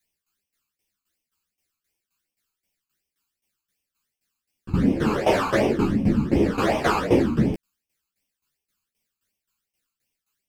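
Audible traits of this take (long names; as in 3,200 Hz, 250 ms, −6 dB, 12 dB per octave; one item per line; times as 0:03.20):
phaser sweep stages 12, 2.7 Hz, lowest notch 580–1,400 Hz
tremolo saw down 3.8 Hz, depth 85%
a shimmering, thickened sound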